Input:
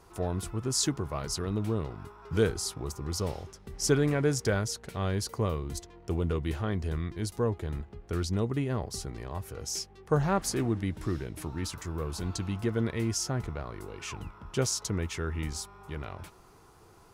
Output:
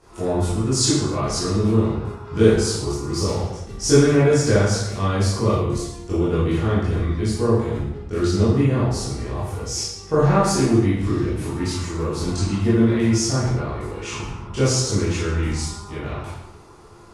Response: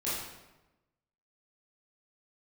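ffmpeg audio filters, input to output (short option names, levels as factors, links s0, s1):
-filter_complex "[0:a]lowpass=f=10000:w=0.5412,lowpass=f=10000:w=1.3066[s0];[1:a]atrim=start_sample=2205,afade=t=out:st=0.42:d=0.01,atrim=end_sample=18963[s1];[s0][s1]afir=irnorm=-1:irlink=0,volume=1.58" -ar 44100 -c:a sbc -b:a 192k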